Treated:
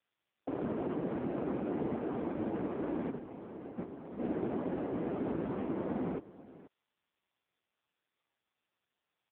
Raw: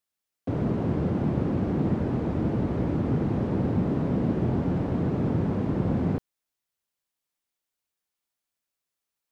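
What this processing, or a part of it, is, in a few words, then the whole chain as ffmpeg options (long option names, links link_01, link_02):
satellite phone: -filter_complex "[0:a]asplit=3[link_01][link_02][link_03];[link_01]afade=type=out:start_time=3.09:duration=0.02[link_04];[link_02]agate=range=-11dB:threshold=-22dB:ratio=16:detection=peak,afade=type=in:start_time=3.09:duration=0.02,afade=type=out:start_time=4.18:duration=0.02[link_05];[link_03]afade=type=in:start_time=4.18:duration=0.02[link_06];[link_04][link_05][link_06]amix=inputs=3:normalize=0,highpass=320,lowpass=3200,aecho=1:1:488:0.126,volume=-1.5dB" -ar 8000 -c:a libopencore_amrnb -b:a 5150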